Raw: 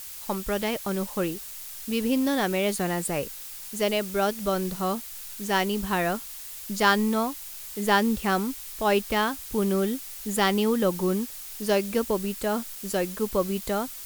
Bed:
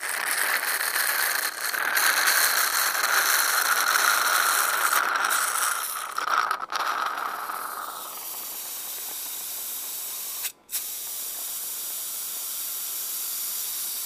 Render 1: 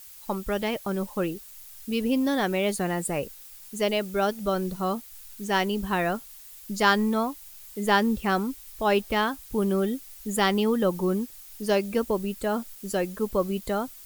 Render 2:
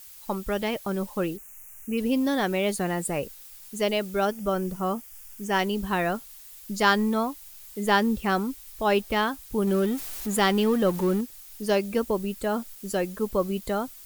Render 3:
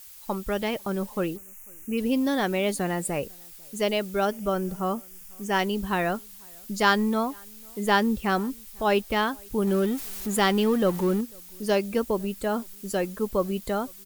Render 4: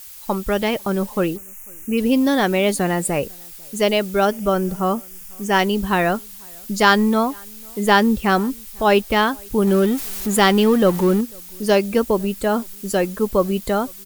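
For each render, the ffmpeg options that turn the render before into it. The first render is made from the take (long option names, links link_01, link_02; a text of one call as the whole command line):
ffmpeg -i in.wav -af "afftdn=noise_reduction=9:noise_floor=-40" out.wav
ffmpeg -i in.wav -filter_complex "[0:a]asplit=3[link_01][link_02][link_03];[link_01]afade=type=out:start_time=1.36:duration=0.02[link_04];[link_02]asuperstop=centerf=4100:order=8:qfactor=1.3,afade=type=in:start_time=1.36:duration=0.02,afade=type=out:start_time=1.97:duration=0.02[link_05];[link_03]afade=type=in:start_time=1.97:duration=0.02[link_06];[link_04][link_05][link_06]amix=inputs=3:normalize=0,asettb=1/sr,asplit=3[link_07][link_08][link_09];[link_07]atrim=end=4.254[link_10];[link_08]atrim=start=4.25:end=5.59,asetpts=PTS-STARTPTS,afade=type=in:duration=0.004:curve=qsin,afade=type=out:start_time=1.336:duration=0.004:curve=qsin,equalizer=frequency=4000:width=4.7:gain=-13.5[link_11];[link_09]atrim=start=5.586[link_12];[link_10][link_11]acrossfade=duration=0.004:curve1=hsin:curve2=qsin[link_13];[link_13][link_12]acrossfade=duration=0.004:curve1=qsin:curve2=hsin,asettb=1/sr,asplit=3[link_14][link_15][link_16];[link_14]atrim=end=9.674[link_17];[link_15]atrim=start=9.67:end=11.21,asetpts=PTS-STARTPTS,afade=type=in:duration=0.004:curve=qsin,afade=type=out:start_time=1.536:duration=0.004:curve=qsin,aeval=exprs='val(0)+0.5*0.0224*sgn(val(0))':channel_layout=same[link_18];[link_16]atrim=start=11.206[link_19];[link_17][link_18]acrossfade=duration=0.004:curve1=hsin:curve2=qsin[link_20];[link_20][link_19]acrossfade=duration=0.004:curve1=qsin:curve2=hsin" out.wav
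ffmpeg -i in.wav -filter_complex "[0:a]asplit=2[link_01][link_02];[link_02]adelay=495.6,volume=-29dB,highshelf=frequency=4000:gain=-11.2[link_03];[link_01][link_03]amix=inputs=2:normalize=0" out.wav
ffmpeg -i in.wav -af "volume=7.5dB,alimiter=limit=-2dB:level=0:latency=1" out.wav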